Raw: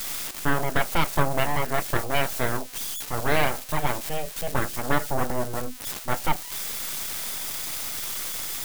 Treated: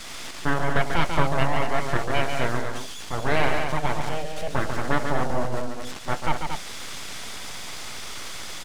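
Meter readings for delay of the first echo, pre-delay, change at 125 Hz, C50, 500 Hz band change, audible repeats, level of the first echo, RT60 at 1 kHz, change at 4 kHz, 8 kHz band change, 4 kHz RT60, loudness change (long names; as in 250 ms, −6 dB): 142 ms, no reverb audible, +2.0 dB, no reverb audible, +1.5 dB, 2, −6.0 dB, no reverb audible, −0.5 dB, −6.5 dB, no reverb audible, −0.5 dB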